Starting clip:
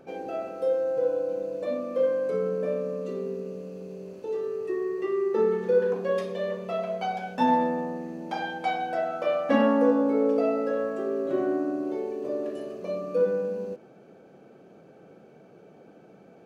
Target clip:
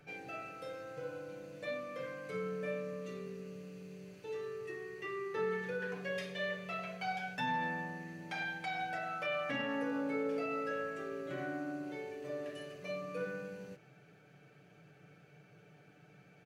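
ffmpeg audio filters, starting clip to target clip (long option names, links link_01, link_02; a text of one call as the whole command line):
ffmpeg -i in.wav -filter_complex "[0:a]equalizer=frequency=125:width_type=o:width=1:gain=5,equalizer=frequency=250:width_type=o:width=1:gain=-12,equalizer=frequency=500:width_type=o:width=1:gain=-9,equalizer=frequency=1000:width_type=o:width=1:gain=-8,equalizer=frequency=2000:width_type=o:width=1:gain=7,acrossover=split=230[link_01][link_02];[link_02]alimiter=level_in=4dB:limit=-24dB:level=0:latency=1:release=50,volume=-4dB[link_03];[link_01][link_03]amix=inputs=2:normalize=0,aecho=1:1:6.8:0.59,volume=-3dB" out.wav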